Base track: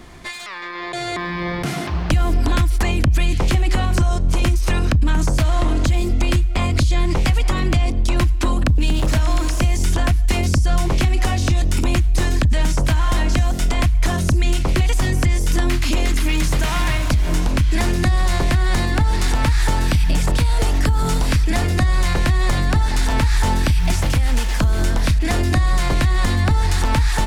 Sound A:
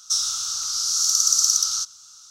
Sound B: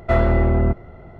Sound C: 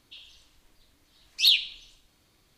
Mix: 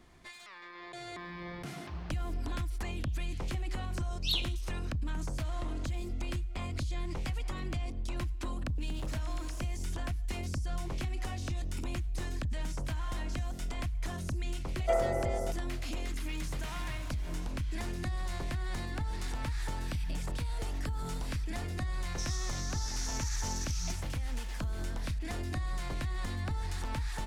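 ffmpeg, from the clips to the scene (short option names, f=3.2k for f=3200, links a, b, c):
-filter_complex "[0:a]volume=-18.5dB[a];[2:a]highpass=480,equalizer=f=510:t=q:w=4:g=7,equalizer=f=730:t=q:w=4:g=7,equalizer=f=1.1k:t=q:w=4:g=-8,equalizer=f=1.6k:t=q:w=4:g=-4,lowpass=f=2k:w=0.5412,lowpass=f=2k:w=1.3066[b];[1:a]alimiter=limit=-15dB:level=0:latency=1:release=71[c];[3:a]atrim=end=2.57,asetpts=PTS-STARTPTS,volume=-12.5dB,afade=t=in:d=0.004:c=hsin,afade=t=out:st=2.566:d=0.004:c=hsin,adelay=2840[d];[b]atrim=end=1.19,asetpts=PTS-STARTPTS,volume=-11.5dB,afade=t=in:d=0.004:c=hsin,afade=t=out:st=1.186:d=0.004:c=hsin,adelay=14790[e];[c]atrim=end=2.3,asetpts=PTS-STARTPTS,volume=-17dB,afade=t=in:d=0.004:c=hsin,afade=t=out:st=2.296:d=0.004:c=hsin,adelay=22080[f];[a][d][e][f]amix=inputs=4:normalize=0"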